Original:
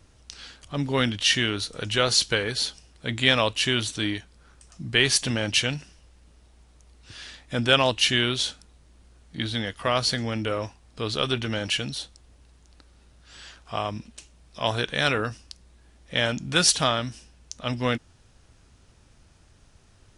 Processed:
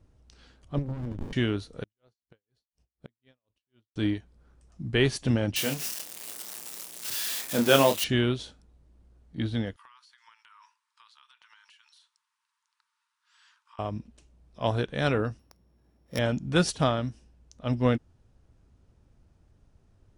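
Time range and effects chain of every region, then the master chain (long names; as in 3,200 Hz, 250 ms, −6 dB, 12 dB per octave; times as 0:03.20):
0:00.78–0:01.33: downward compressor 8 to 1, threshold −26 dBFS + windowed peak hold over 65 samples
0:01.83–0:03.96: mu-law and A-law mismatch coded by A + gate with flip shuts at −21 dBFS, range −29 dB + tremolo with a sine in dB 4.1 Hz, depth 35 dB
0:05.56–0:08.04: spike at every zero crossing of −11 dBFS + high-pass filter 200 Hz + double-tracking delay 29 ms −5.5 dB
0:09.76–0:13.79: linear-phase brick-wall high-pass 870 Hz + downward compressor 12 to 1, threshold −38 dBFS
0:15.39–0:16.19: samples sorted by size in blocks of 8 samples + high-pass filter 85 Hz
whole clip: tilt shelving filter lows +7.5 dB, about 1,100 Hz; expander for the loud parts 1.5 to 1, over −34 dBFS; level −1.5 dB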